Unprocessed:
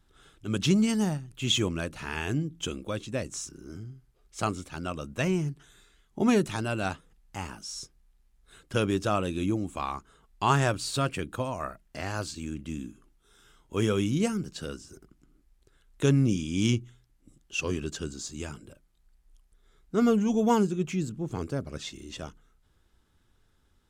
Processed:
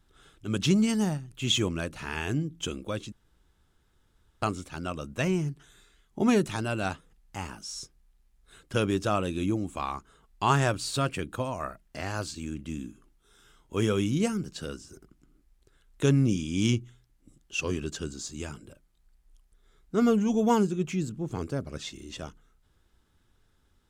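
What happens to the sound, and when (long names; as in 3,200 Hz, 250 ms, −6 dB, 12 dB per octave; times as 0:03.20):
0:03.12–0:04.42: fill with room tone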